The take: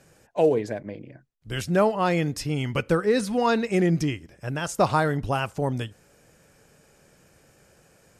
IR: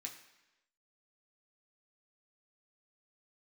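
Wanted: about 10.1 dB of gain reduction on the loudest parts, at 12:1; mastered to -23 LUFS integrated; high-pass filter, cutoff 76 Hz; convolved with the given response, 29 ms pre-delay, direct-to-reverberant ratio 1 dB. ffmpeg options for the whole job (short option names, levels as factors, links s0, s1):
-filter_complex "[0:a]highpass=76,acompressor=threshold=0.0562:ratio=12,asplit=2[s0][s1];[1:a]atrim=start_sample=2205,adelay=29[s2];[s1][s2]afir=irnorm=-1:irlink=0,volume=1.33[s3];[s0][s3]amix=inputs=2:normalize=0,volume=2.11"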